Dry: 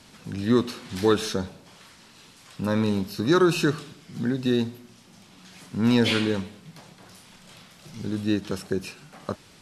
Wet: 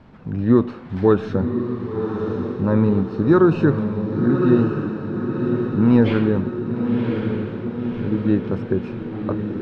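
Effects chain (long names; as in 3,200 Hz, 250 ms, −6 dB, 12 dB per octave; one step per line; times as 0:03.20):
low-pass filter 1,300 Hz 12 dB per octave
low-shelf EQ 120 Hz +7.5 dB
on a send: feedback delay with all-pass diffusion 1,080 ms, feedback 60%, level −5.5 dB
on the sum: level +4.5 dB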